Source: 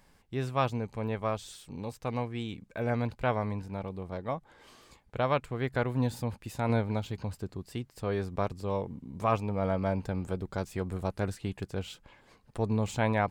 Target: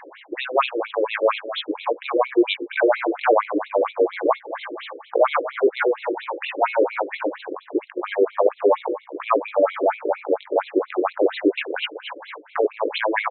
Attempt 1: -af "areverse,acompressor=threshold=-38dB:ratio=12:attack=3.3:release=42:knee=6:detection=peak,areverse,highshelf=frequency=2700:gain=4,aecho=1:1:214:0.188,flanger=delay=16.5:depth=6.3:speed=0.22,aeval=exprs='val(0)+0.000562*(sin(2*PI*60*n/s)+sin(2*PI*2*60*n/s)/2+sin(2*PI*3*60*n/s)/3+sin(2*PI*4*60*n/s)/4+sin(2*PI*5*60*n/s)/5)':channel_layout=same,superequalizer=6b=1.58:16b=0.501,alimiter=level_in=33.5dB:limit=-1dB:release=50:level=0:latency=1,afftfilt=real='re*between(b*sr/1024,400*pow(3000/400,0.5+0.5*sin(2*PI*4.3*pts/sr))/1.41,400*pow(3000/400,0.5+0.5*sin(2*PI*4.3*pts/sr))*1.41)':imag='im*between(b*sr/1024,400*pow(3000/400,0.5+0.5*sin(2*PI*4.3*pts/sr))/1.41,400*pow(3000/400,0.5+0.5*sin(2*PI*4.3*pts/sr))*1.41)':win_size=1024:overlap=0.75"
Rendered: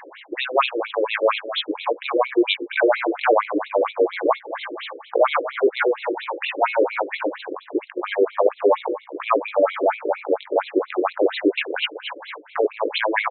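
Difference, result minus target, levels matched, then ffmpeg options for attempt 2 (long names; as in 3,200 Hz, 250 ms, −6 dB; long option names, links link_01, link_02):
4,000 Hz band +3.0 dB
-af "areverse,acompressor=threshold=-38dB:ratio=12:attack=3.3:release=42:knee=6:detection=peak,areverse,highshelf=frequency=2700:gain=-2.5,aecho=1:1:214:0.188,flanger=delay=16.5:depth=6.3:speed=0.22,aeval=exprs='val(0)+0.000562*(sin(2*PI*60*n/s)+sin(2*PI*2*60*n/s)/2+sin(2*PI*3*60*n/s)/3+sin(2*PI*4*60*n/s)/4+sin(2*PI*5*60*n/s)/5)':channel_layout=same,superequalizer=6b=1.58:16b=0.501,alimiter=level_in=33.5dB:limit=-1dB:release=50:level=0:latency=1,afftfilt=real='re*between(b*sr/1024,400*pow(3000/400,0.5+0.5*sin(2*PI*4.3*pts/sr))/1.41,400*pow(3000/400,0.5+0.5*sin(2*PI*4.3*pts/sr))*1.41)':imag='im*between(b*sr/1024,400*pow(3000/400,0.5+0.5*sin(2*PI*4.3*pts/sr))/1.41,400*pow(3000/400,0.5+0.5*sin(2*PI*4.3*pts/sr))*1.41)':win_size=1024:overlap=0.75"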